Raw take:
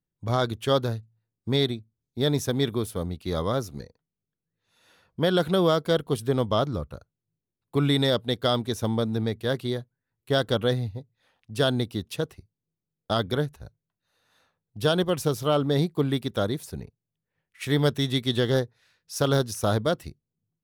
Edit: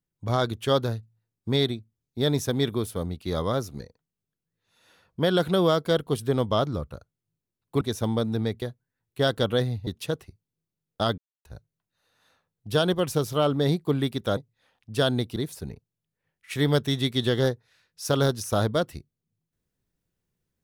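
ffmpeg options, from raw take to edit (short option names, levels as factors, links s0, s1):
-filter_complex "[0:a]asplit=8[s0][s1][s2][s3][s4][s5][s6][s7];[s0]atrim=end=7.812[s8];[s1]atrim=start=8.618:end=9.432[s9];[s2]atrim=start=9.728:end=10.982[s10];[s3]atrim=start=11.968:end=13.28,asetpts=PTS-STARTPTS,afade=t=out:st=1.308:d=0.004:c=hsin[s11];[s4]atrim=start=13.28:end=13.55,asetpts=PTS-STARTPTS,volume=0[s12];[s5]atrim=start=13.55:end=16.472,asetpts=PTS-STARTPTS,afade=t=in:d=0.004:c=hsin[s13];[s6]atrim=start=10.978:end=11.972[s14];[s7]atrim=start=16.468[s15];[s8][s9]acrossfade=d=0.004:c1=hsin:c2=hsin[s16];[s16][s10]acrossfade=d=0.004:c1=hsin:c2=hsin[s17];[s11][s12][s13]concat=n=3:v=0:a=1[s18];[s17][s18]acrossfade=d=0.004:c1=hsin:c2=hsin[s19];[s19][s14]acrossfade=d=0.004:c1=hsin:c2=hsin[s20];[s20][s15]acrossfade=d=0.004:c1=hsin:c2=hsin"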